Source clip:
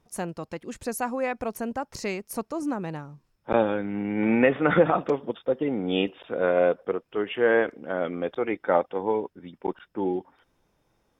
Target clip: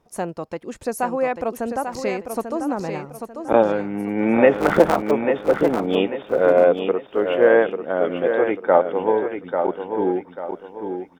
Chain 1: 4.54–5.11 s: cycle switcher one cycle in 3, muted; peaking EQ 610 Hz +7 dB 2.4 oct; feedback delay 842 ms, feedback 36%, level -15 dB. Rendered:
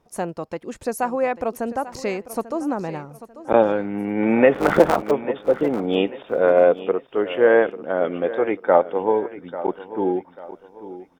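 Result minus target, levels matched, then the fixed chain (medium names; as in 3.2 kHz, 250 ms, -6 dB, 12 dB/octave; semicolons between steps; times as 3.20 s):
echo-to-direct -8 dB
4.54–5.11 s: cycle switcher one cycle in 3, muted; peaking EQ 610 Hz +7 dB 2.4 oct; feedback delay 842 ms, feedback 36%, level -7 dB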